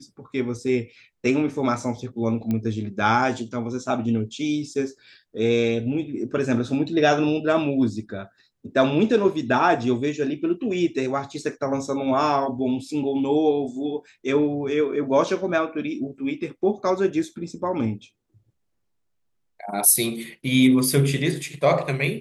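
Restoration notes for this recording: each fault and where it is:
2.51 s: pop -15 dBFS

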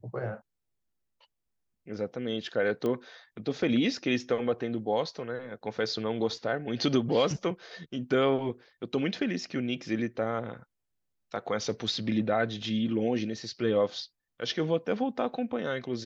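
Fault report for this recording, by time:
2.86 s: pop -20 dBFS

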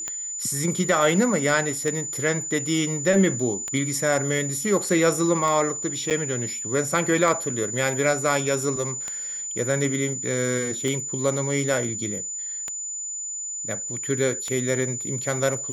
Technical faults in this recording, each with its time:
tick 33 1/3 rpm -14 dBFS
whine 7 kHz -29 dBFS
6.10–6.11 s: dropout 7.8 ms

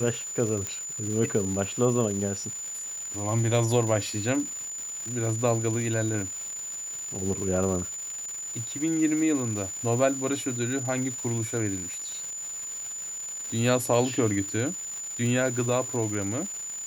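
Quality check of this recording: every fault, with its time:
crackle 500 per s -34 dBFS
whine 7 kHz -33 dBFS
0.67 s: pop -16 dBFS

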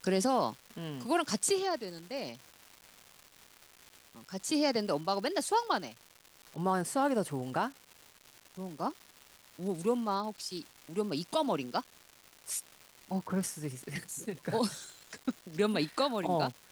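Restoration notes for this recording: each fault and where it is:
crackle 500 per s -42 dBFS

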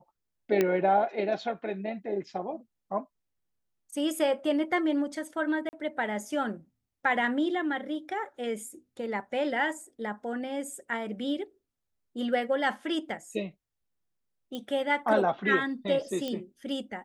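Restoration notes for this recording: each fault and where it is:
0.61 s: pop -12 dBFS
5.69–5.73 s: dropout 39 ms
14.55 s: pop -23 dBFS
16.28 s: pop -20 dBFS

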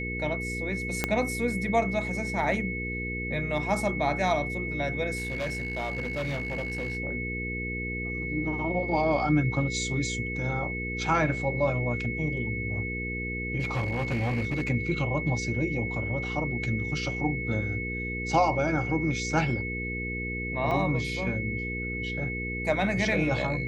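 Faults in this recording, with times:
hum 60 Hz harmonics 8 -35 dBFS
whine 2.2 kHz -33 dBFS
1.04 s: pop -10 dBFS
5.16–6.97 s: clipped -27 dBFS
13.59–14.69 s: clipped -24 dBFS
20.71 s: dropout 3.6 ms

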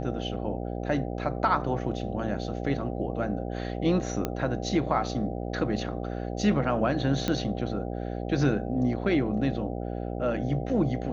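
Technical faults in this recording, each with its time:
buzz 60 Hz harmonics 13 -33 dBFS
4.25 s: pop -14 dBFS
7.28 s: pop -13 dBFS

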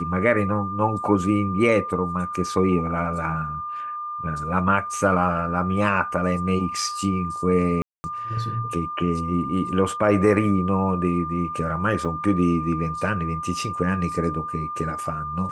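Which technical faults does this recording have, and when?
whine 1.2 kHz -28 dBFS
7.82–8.04 s: dropout 220 ms
12.05 s: dropout 4.8 ms

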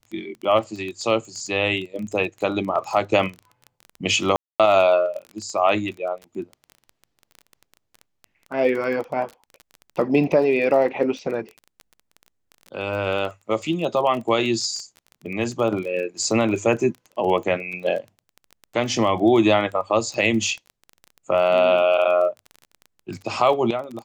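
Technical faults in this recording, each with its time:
crackle 20 per s -29 dBFS
4.36–4.60 s: dropout 237 ms

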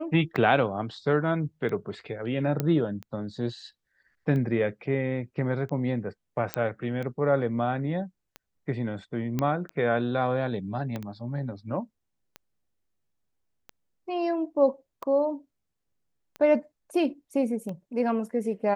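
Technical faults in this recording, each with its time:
tick 45 rpm -24 dBFS
2.60 s: pop -13 dBFS
6.54 s: pop -11 dBFS
9.39 s: pop -14 dBFS
10.96 s: pop -20 dBFS

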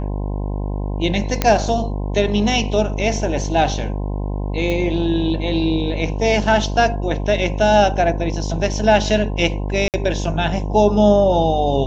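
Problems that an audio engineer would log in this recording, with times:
buzz 50 Hz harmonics 21 -23 dBFS
1.42 s: pop -2 dBFS
4.70 s: pop -11 dBFS
9.88–9.94 s: dropout 58 ms

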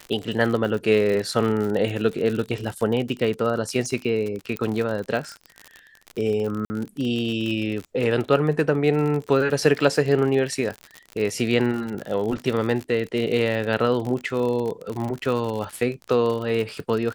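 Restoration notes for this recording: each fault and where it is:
crackle 58 per s -27 dBFS
4.57 s: pop -14 dBFS
6.65–6.70 s: dropout 50 ms

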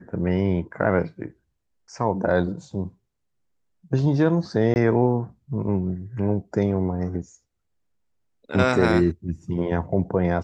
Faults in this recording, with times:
4.74–4.76 s: dropout 19 ms

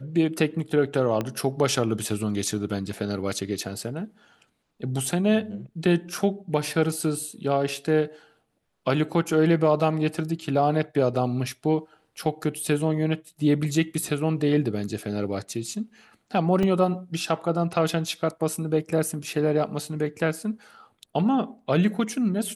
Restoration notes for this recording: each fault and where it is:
1.21 s: pop -14 dBFS
16.63 s: dropout 3.3 ms

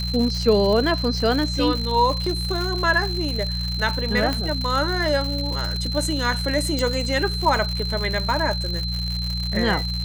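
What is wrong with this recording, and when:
crackle 150 per s -25 dBFS
hum 60 Hz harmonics 3 -27 dBFS
whine 4.1 kHz -28 dBFS
2.26 s: dropout 4.2 ms
4.33 s: pop -10 dBFS
6.79 s: pop

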